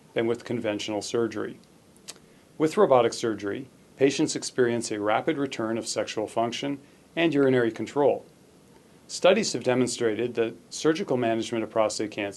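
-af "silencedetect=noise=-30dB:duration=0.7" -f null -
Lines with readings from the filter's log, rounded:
silence_start: 8.18
silence_end: 9.11 | silence_duration: 0.94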